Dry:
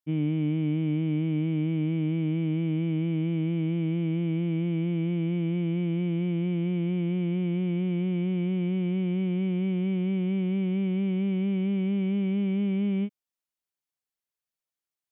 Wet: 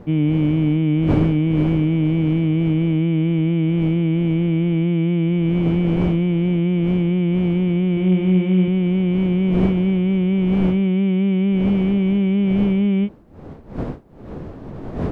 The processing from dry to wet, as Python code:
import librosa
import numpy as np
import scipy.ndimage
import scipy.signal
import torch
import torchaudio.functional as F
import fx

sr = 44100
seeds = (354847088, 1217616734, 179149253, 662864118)

y = fx.dmg_wind(x, sr, seeds[0], corner_hz=320.0, level_db=-40.0)
y = fx.room_flutter(y, sr, wall_m=8.4, rt60_s=0.46, at=(7.92, 8.68))
y = y * librosa.db_to_amplitude(9.0)